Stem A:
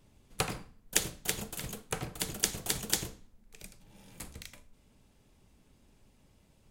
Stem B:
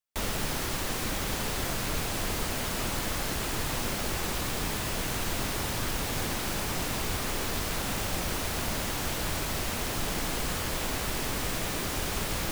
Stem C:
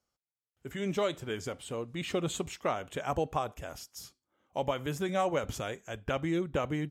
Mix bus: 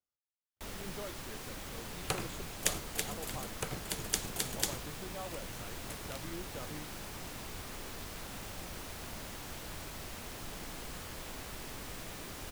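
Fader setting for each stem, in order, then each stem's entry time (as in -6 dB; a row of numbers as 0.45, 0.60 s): -3.5, -13.0, -15.0 dB; 1.70, 0.45, 0.00 s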